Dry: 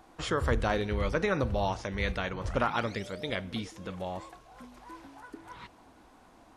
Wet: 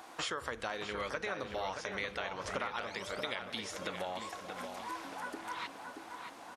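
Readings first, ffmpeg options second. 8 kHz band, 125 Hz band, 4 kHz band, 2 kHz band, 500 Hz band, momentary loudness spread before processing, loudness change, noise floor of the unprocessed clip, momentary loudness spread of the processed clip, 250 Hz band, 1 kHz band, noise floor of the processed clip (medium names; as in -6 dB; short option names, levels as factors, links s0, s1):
+1.5 dB, -18.0 dB, -0.5 dB, -3.5 dB, -7.5 dB, 20 LU, -7.5 dB, -58 dBFS, 6 LU, -11.0 dB, -4.5 dB, -51 dBFS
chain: -filter_complex "[0:a]highpass=f=940:p=1,acompressor=threshold=0.00501:ratio=6,asplit=2[s0][s1];[s1]adelay=628,lowpass=f=3200:p=1,volume=0.501,asplit=2[s2][s3];[s3]adelay=628,lowpass=f=3200:p=1,volume=0.51,asplit=2[s4][s5];[s5]adelay=628,lowpass=f=3200:p=1,volume=0.51,asplit=2[s6][s7];[s7]adelay=628,lowpass=f=3200:p=1,volume=0.51,asplit=2[s8][s9];[s9]adelay=628,lowpass=f=3200:p=1,volume=0.51,asplit=2[s10][s11];[s11]adelay=628,lowpass=f=3200:p=1,volume=0.51[s12];[s0][s2][s4][s6][s8][s10][s12]amix=inputs=7:normalize=0,volume=3.16"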